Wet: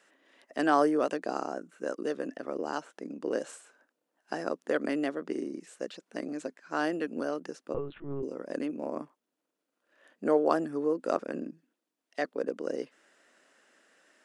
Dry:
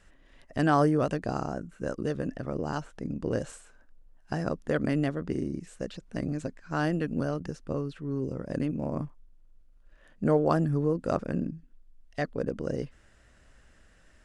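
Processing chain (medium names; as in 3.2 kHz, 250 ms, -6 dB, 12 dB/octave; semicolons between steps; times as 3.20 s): high-pass 280 Hz 24 dB/octave; 7.74–8.23 s: LPC vocoder at 8 kHz pitch kept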